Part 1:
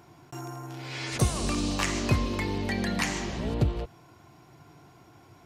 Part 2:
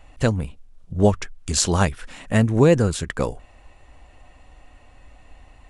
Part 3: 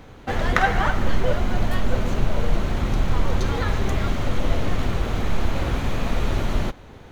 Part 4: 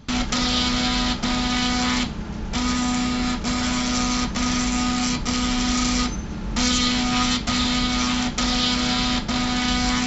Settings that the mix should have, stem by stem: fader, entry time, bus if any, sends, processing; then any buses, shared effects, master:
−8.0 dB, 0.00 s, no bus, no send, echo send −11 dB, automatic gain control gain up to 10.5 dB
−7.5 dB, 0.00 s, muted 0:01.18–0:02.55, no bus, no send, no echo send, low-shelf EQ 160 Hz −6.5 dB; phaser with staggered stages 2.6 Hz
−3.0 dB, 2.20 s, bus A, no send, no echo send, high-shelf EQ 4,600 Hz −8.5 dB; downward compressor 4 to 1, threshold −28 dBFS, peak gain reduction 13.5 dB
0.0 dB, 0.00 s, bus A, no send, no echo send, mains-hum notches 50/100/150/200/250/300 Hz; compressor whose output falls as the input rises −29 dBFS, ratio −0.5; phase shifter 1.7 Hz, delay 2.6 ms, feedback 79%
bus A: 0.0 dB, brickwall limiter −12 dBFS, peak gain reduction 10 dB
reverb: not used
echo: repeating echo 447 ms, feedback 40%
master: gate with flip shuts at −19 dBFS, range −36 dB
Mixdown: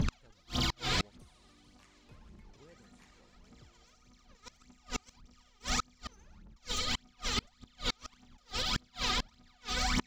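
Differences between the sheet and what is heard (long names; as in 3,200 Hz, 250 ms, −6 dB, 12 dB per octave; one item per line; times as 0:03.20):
stem 2: missing phaser with staggered stages 2.6 Hz
stem 3 −3.0 dB → −12.0 dB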